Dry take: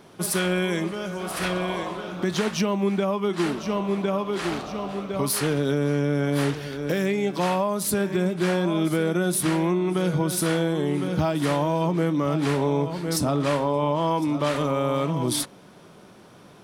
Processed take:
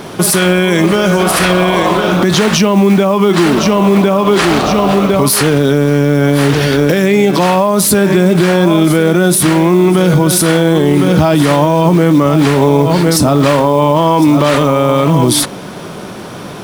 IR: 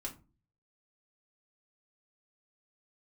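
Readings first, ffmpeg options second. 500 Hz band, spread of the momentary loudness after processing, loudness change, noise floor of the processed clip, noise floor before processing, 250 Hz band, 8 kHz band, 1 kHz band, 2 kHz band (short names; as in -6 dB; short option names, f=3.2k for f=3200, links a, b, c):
+14.0 dB, 2 LU, +14.5 dB, -27 dBFS, -49 dBFS, +15.0 dB, +14.5 dB, +14.5 dB, +14.5 dB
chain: -af "acrusher=bits=7:mode=log:mix=0:aa=0.000001,alimiter=level_in=23.5dB:limit=-1dB:release=50:level=0:latency=1,volume=-1dB"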